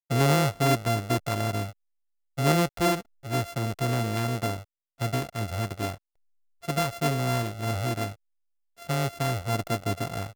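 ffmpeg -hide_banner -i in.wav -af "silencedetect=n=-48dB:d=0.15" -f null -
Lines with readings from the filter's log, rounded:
silence_start: 1.72
silence_end: 2.37 | silence_duration: 0.65
silence_start: 3.02
silence_end: 3.23 | silence_duration: 0.22
silence_start: 4.63
silence_end: 4.99 | silence_duration: 0.36
silence_start: 5.97
silence_end: 6.62 | silence_duration: 0.65
silence_start: 8.15
silence_end: 8.78 | silence_duration: 0.63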